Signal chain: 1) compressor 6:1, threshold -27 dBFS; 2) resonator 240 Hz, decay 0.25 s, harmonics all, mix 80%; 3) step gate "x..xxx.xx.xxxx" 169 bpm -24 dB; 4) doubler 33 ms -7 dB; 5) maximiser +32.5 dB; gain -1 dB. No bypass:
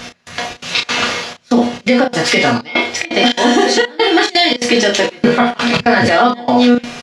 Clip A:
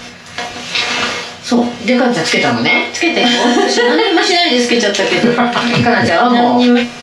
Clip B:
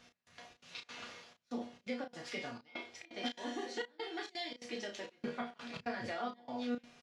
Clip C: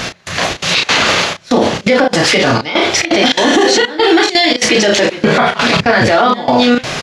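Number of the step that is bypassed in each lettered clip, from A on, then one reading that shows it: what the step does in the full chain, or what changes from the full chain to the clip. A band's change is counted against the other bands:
3, loudness change +1.5 LU; 5, crest factor change +6.0 dB; 2, 125 Hz band +3.0 dB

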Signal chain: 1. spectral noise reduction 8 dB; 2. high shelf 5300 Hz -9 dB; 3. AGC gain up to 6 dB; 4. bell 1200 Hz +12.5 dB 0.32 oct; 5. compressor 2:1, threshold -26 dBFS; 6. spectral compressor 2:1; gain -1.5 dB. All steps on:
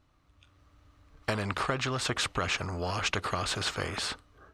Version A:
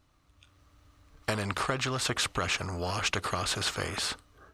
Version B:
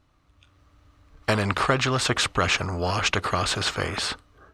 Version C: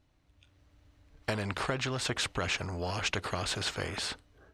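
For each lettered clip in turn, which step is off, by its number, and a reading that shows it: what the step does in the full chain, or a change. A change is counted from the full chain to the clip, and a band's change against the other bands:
2, 8 kHz band +3.0 dB; 5, loudness change +7.0 LU; 4, 1 kHz band -2.5 dB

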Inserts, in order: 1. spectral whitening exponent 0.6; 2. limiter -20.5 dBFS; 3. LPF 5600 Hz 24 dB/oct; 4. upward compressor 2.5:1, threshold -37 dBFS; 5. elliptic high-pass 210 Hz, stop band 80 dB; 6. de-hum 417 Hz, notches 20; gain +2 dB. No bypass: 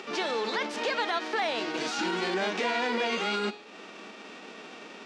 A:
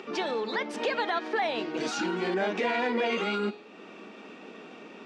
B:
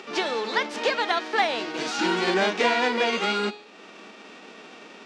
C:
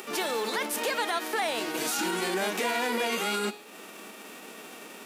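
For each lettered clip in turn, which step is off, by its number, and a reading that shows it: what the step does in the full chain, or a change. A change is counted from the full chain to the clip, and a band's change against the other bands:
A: 1, 4 kHz band -4.5 dB; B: 2, mean gain reduction 2.5 dB; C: 3, 8 kHz band +9.5 dB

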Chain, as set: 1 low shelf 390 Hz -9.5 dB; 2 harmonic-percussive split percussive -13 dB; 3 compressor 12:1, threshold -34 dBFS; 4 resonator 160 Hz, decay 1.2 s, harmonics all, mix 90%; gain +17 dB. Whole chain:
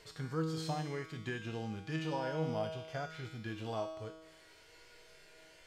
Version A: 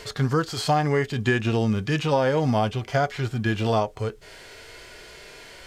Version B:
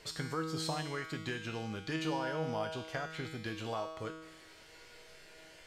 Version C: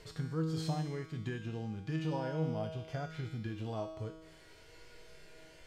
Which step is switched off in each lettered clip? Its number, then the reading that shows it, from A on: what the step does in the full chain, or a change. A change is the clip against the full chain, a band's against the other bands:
4, loudness change +15.5 LU; 2, 125 Hz band -5.0 dB; 1, 125 Hz band +6.0 dB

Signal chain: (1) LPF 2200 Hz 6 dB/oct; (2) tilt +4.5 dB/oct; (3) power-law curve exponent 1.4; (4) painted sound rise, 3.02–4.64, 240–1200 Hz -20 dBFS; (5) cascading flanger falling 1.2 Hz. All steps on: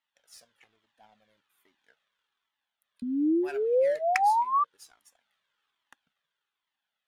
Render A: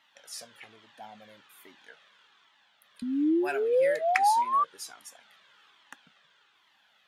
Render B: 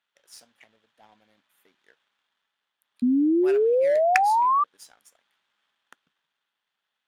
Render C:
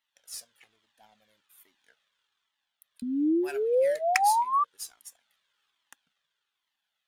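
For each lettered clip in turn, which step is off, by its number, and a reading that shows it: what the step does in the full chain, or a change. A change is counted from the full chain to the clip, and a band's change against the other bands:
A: 3, 8 kHz band +8.0 dB; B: 5, momentary loudness spread change -4 LU; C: 1, 8 kHz band +12.0 dB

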